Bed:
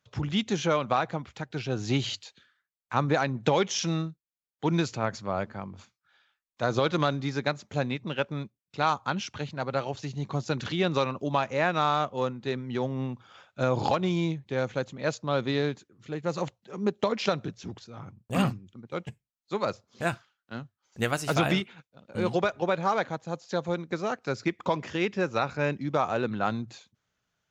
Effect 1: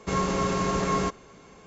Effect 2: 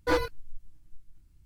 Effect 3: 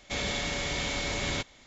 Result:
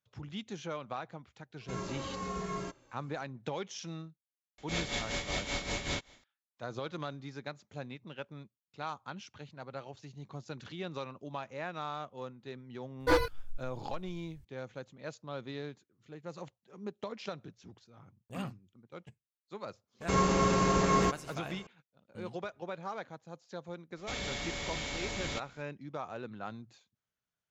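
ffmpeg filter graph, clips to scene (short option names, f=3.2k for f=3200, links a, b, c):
-filter_complex "[1:a]asplit=2[a][b];[3:a]asplit=2[c][d];[0:a]volume=-14dB[e];[a]asplit=2[f][g];[g]adelay=2.4,afreqshift=-1.2[h];[f][h]amix=inputs=2:normalize=1[i];[c]tremolo=f=5.2:d=0.71[j];[i]atrim=end=1.66,asetpts=PTS-STARTPTS,volume=-10dB,afade=t=in:d=0.004:c=hsin,afade=t=out:st=1.656:d=0.004:c=hsin,adelay=1610[k];[j]atrim=end=1.66,asetpts=PTS-STARTPTS,volume=-1.5dB,afade=t=in:d=0.004:c=hsin,afade=t=out:st=1.656:d=0.004:c=hsin,adelay=4580[l];[2:a]atrim=end=1.45,asetpts=PTS-STARTPTS,volume=-0.5dB,afade=t=in:d=0.004:c=hsin,afade=t=out:st=1.446:d=0.004:c=hsin,adelay=573300S[m];[b]atrim=end=1.66,asetpts=PTS-STARTPTS,volume=-1dB,afade=t=in:d=0.004:c=hsin,afade=t=out:st=1.656:d=0.004:c=hsin,adelay=20010[n];[d]atrim=end=1.66,asetpts=PTS-STARTPTS,volume=-6.5dB,afade=t=in:d=0.004:c=hsin,afade=t=out:st=1.656:d=0.004:c=hsin,adelay=23970[o];[e][k][l][m][n][o]amix=inputs=6:normalize=0"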